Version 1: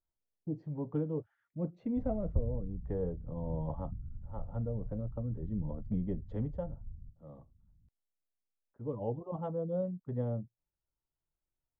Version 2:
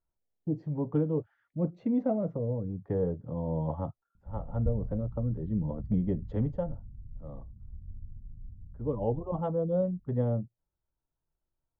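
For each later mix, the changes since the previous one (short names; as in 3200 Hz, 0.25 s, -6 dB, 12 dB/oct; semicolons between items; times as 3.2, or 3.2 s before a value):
speech +6.0 dB; background: entry +2.30 s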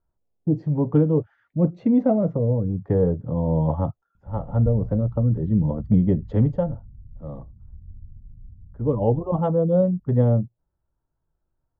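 speech +8.5 dB; master: add bell 89 Hz +3 dB 2.4 oct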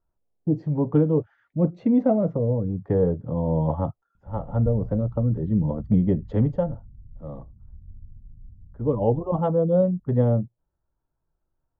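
master: add bell 89 Hz -3 dB 2.4 oct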